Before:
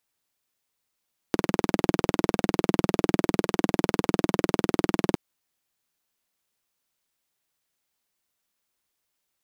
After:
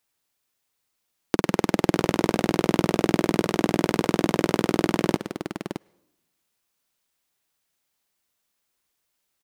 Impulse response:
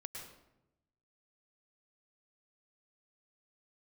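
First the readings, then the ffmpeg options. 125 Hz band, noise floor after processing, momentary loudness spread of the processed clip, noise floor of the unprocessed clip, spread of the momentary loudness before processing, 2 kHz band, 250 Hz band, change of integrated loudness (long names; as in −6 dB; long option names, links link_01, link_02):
+2.5 dB, −77 dBFS, 12 LU, −80 dBFS, 3 LU, +3.0 dB, +2.5 dB, +2.5 dB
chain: -filter_complex "[0:a]aecho=1:1:618:0.299,asplit=2[link_01][link_02];[1:a]atrim=start_sample=2205,lowshelf=frequency=410:gain=-10.5[link_03];[link_02][link_03]afir=irnorm=-1:irlink=0,volume=-18dB[link_04];[link_01][link_04]amix=inputs=2:normalize=0,volume=2dB"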